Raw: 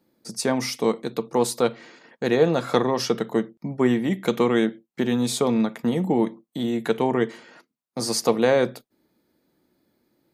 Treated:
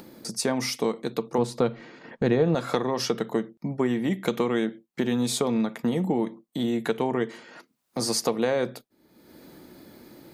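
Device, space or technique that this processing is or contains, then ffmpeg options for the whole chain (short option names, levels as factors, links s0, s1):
upward and downward compression: -filter_complex "[0:a]acompressor=mode=upward:threshold=0.0282:ratio=2.5,acompressor=threshold=0.0891:ratio=4,asettb=1/sr,asplit=3[s0][s1][s2];[s0]atrim=end=1.384[s3];[s1]atrim=start=1.38:end=2.55,asetpts=PTS-STARTPTS,afade=t=in:d=0.004:c=qsin,afade=t=out:st=1.166:d=0.004:c=qsin,aemphasis=mode=reproduction:type=bsi[s4];[s2]atrim=start=2.546[s5];[s3][s4]acrossfade=d=0.004:c1=hsin:c2=qsin[s6];[s6][s5]acrossfade=d=0.004:c1=qsin:c2=hsin"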